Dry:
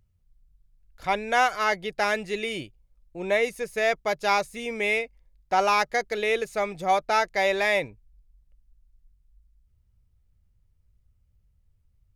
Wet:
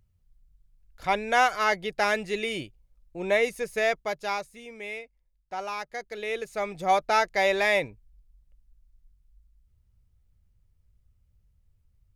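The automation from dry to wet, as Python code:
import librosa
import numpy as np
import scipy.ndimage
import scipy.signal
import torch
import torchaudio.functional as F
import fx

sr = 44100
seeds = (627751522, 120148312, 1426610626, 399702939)

y = fx.gain(x, sr, db=fx.line((3.77, 0.0), (4.69, -12.0), (5.82, -12.0), (6.91, 0.0)))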